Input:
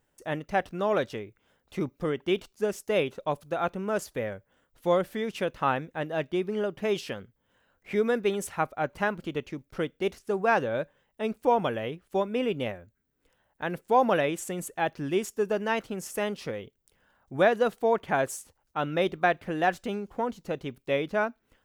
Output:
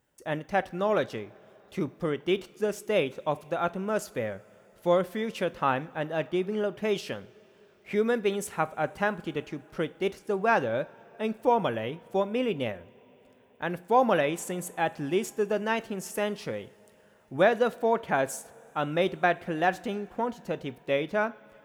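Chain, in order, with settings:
high-pass filter 44 Hz
coupled-rooms reverb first 0.4 s, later 4.9 s, from −19 dB, DRR 15 dB

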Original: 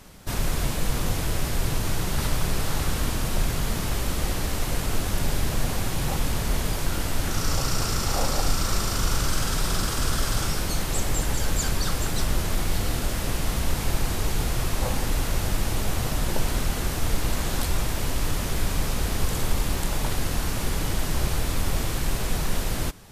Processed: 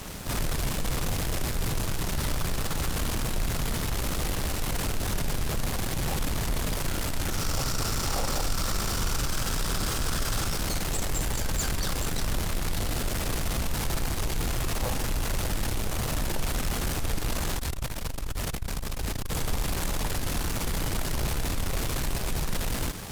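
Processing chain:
in parallel at −11 dB: fuzz pedal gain 48 dB, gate −51 dBFS
0:17.56–0:19.32: on the sum: saturating transformer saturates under 81 Hz
level −8 dB

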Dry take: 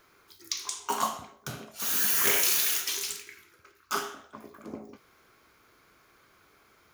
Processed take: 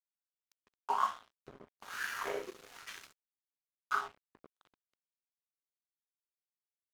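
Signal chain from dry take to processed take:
harmonic and percussive parts rebalanced harmonic +5 dB
auto-filter band-pass sine 1.1 Hz 360–1,600 Hz
dead-zone distortion −45.5 dBFS

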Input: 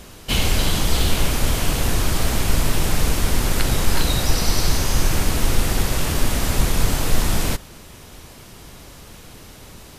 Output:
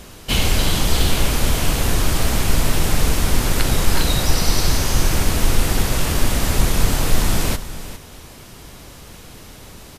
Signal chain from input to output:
single-tap delay 404 ms −13.5 dB
level +1.5 dB

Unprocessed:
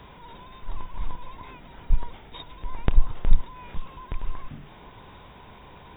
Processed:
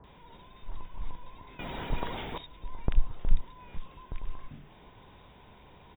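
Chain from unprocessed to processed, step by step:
multiband delay without the direct sound lows, highs 40 ms, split 1,300 Hz
0:01.59–0:02.38: every bin compressed towards the loudest bin 2 to 1
level −6.5 dB

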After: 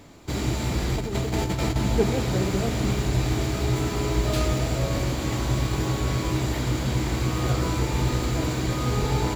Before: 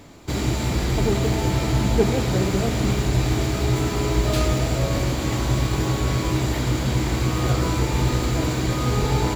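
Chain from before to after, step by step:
0:00.96–0:01.76: compressor whose output falls as the input rises −22 dBFS, ratio −0.5
level −3 dB

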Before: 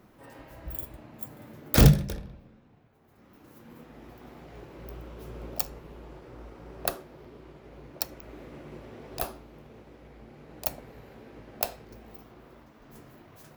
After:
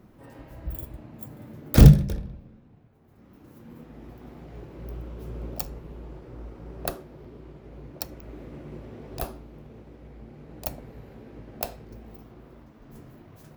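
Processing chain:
low-shelf EQ 400 Hz +10 dB
level −3 dB

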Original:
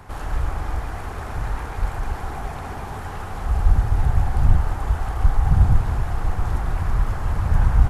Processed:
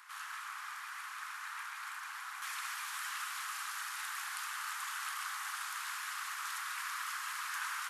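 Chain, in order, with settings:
Butterworth high-pass 1,100 Hz 48 dB per octave
high-shelf EQ 2,000 Hz +3 dB, from 0:02.42 +12 dB
level −5.5 dB

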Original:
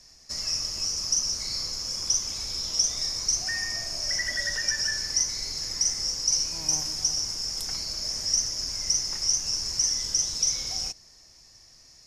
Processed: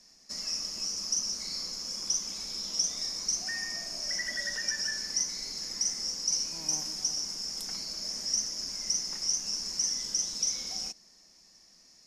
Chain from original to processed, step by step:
low shelf with overshoot 150 Hz −8 dB, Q 3
level −5 dB

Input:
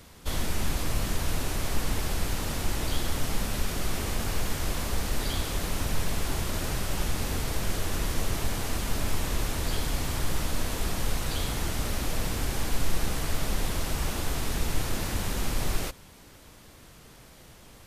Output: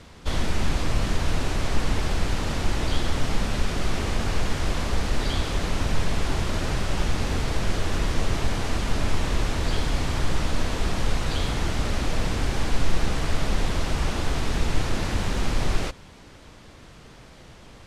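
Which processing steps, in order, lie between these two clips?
high-frequency loss of the air 77 metres
level +5 dB

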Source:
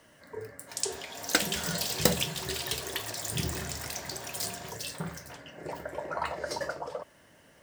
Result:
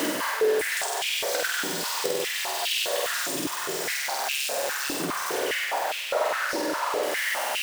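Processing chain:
converter with a step at zero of −20 dBFS
0:03.94–0:05.02: amplitude modulation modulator 140 Hz, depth 100%
flutter between parallel walls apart 8.3 metres, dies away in 1.3 s
downward compressor, threshold −25 dBFS, peak gain reduction 12 dB
high-pass on a step sequencer 4.9 Hz 290–2,700 Hz
level −2.5 dB

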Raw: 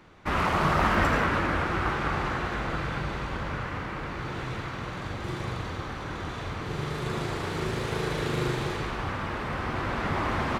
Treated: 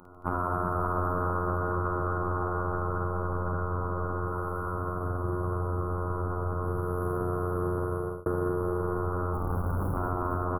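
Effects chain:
0:04.27–0:04.72: tilt shelving filter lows −6.5 dB, about 1,300 Hz
phases set to zero 89.4 Hz
0:06.62–0:07.17: high-shelf EQ 8,800 Hz +8.5 dB
0:09.33–0:09.94: comparator with hysteresis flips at −35 dBFS
brick-wall band-stop 1,500–10,000 Hz
multi-tap delay 53/147/223/505 ms −3.5/−9.5/−7.5/−3.5 dB
0:07.79–0:08.26: fade out
downward compressor 4 to 1, threshold −30 dBFS, peak gain reduction 10.5 dB
highs frequency-modulated by the lows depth 0.13 ms
level +4.5 dB

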